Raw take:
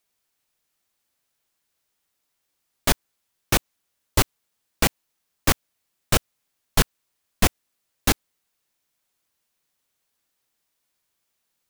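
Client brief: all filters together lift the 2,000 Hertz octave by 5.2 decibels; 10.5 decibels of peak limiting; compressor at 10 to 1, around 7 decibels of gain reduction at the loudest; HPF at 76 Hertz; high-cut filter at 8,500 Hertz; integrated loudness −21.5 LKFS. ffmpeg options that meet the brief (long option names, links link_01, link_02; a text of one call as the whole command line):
ffmpeg -i in.wav -af "highpass=76,lowpass=8500,equalizer=frequency=2000:width_type=o:gain=6.5,acompressor=threshold=-21dB:ratio=10,volume=13dB,alimiter=limit=-3.5dB:level=0:latency=1" out.wav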